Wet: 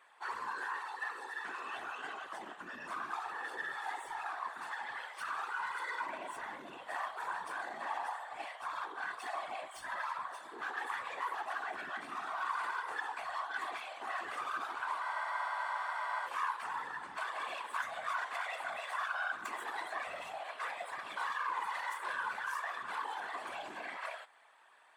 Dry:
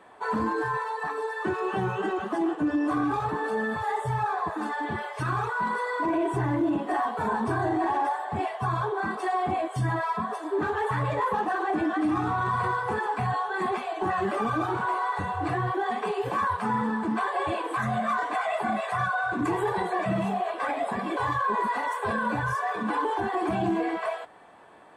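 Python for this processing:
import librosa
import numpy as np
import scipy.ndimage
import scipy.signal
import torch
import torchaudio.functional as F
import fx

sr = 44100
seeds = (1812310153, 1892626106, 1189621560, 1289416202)

y = fx.tracing_dist(x, sr, depth_ms=0.034)
y = scipy.signal.sosfilt(scipy.signal.butter(2, 1300.0, 'highpass', fs=sr, output='sos'), y)
y = fx.whisperise(y, sr, seeds[0])
y = fx.spec_freeze(y, sr, seeds[1], at_s=15.04, hold_s=1.22)
y = y * 10.0 ** (-5.0 / 20.0)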